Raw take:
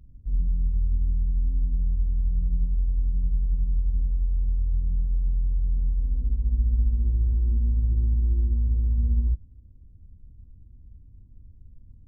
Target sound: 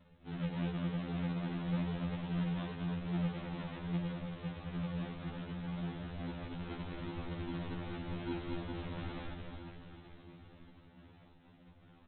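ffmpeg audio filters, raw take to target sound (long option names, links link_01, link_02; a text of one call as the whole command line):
ffmpeg -i in.wav -af "highpass=380,aecho=1:1:6.2:0.6,alimiter=level_in=22dB:limit=-24dB:level=0:latency=1:release=54,volume=-22dB,aresample=8000,acrusher=samples=19:mix=1:aa=0.000001:lfo=1:lforange=11.4:lforate=2.5,aresample=44100,aecho=1:1:220|506|877.8|1361|1989:0.631|0.398|0.251|0.158|0.1,afftfilt=real='re*2*eq(mod(b,4),0)':imag='im*2*eq(mod(b,4),0)':win_size=2048:overlap=0.75,volume=14.5dB" out.wav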